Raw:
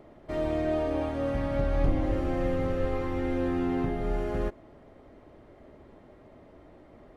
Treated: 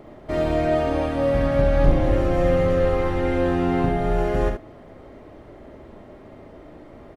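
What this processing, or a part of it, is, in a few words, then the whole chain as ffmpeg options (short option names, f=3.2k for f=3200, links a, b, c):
slapback doubling: -filter_complex "[0:a]asplit=3[a][b][c];[b]adelay=40,volume=-7.5dB[d];[c]adelay=70,volume=-6dB[e];[a][d][e]amix=inputs=3:normalize=0,volume=7.5dB"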